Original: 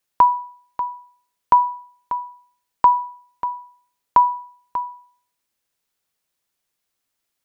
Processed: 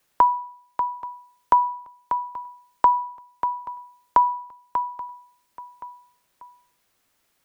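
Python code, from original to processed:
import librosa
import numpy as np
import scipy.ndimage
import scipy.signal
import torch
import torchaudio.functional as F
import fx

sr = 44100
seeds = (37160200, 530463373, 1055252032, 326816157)

p1 = x + fx.echo_feedback(x, sr, ms=830, feedback_pct=36, wet_db=-23.0, dry=0)
y = fx.band_squash(p1, sr, depth_pct=40)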